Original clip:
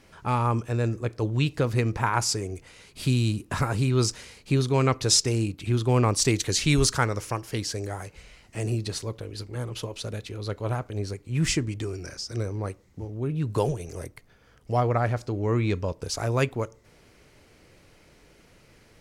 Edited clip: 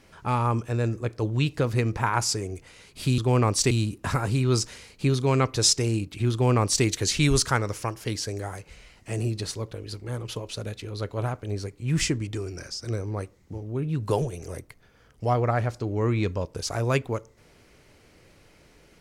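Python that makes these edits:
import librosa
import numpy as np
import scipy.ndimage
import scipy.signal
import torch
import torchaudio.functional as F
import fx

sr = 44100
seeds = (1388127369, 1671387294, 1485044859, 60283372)

y = fx.edit(x, sr, fx.duplicate(start_s=5.79, length_s=0.53, to_s=3.18), tone=tone)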